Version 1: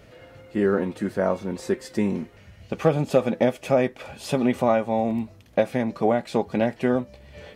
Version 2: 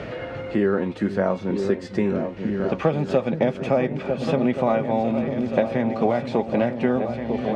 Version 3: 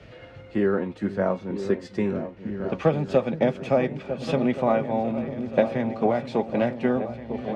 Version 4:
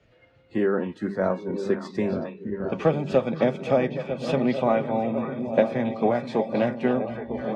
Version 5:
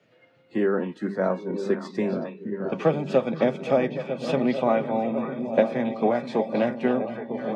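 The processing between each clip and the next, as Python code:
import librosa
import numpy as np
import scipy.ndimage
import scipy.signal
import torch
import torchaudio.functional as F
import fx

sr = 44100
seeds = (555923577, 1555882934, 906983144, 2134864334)

y1 = scipy.signal.sosfilt(scipy.signal.butter(2, 4300.0, 'lowpass', fs=sr, output='sos'), x)
y1 = fx.echo_opening(y1, sr, ms=475, hz=200, octaves=2, feedback_pct=70, wet_db=-6)
y1 = fx.band_squash(y1, sr, depth_pct=70)
y2 = fx.band_widen(y1, sr, depth_pct=100)
y2 = F.gain(torch.from_numpy(y2), -2.0).numpy()
y3 = fx.hum_notches(y2, sr, base_hz=50, count=4)
y3 = fx.echo_stepped(y3, sr, ms=273, hz=3500.0, octaves=-1.4, feedback_pct=70, wet_db=-5)
y3 = fx.noise_reduce_blind(y3, sr, reduce_db=14)
y4 = scipy.signal.sosfilt(scipy.signal.butter(4, 140.0, 'highpass', fs=sr, output='sos'), y3)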